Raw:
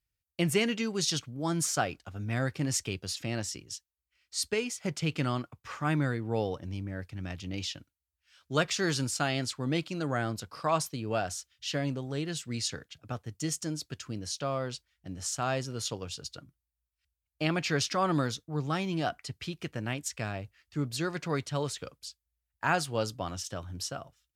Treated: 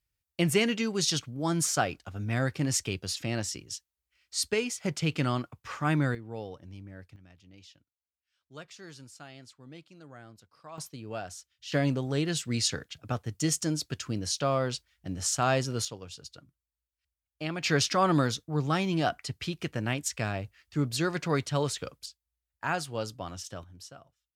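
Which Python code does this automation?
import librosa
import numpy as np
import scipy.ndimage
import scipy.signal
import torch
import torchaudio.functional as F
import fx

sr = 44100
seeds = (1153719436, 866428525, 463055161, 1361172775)

y = fx.gain(x, sr, db=fx.steps((0.0, 2.0), (6.15, -8.5), (7.16, -18.0), (10.78, -6.5), (11.72, 5.0), (15.85, -5.0), (17.63, 3.5), (22.06, -3.0), (23.64, -11.0)))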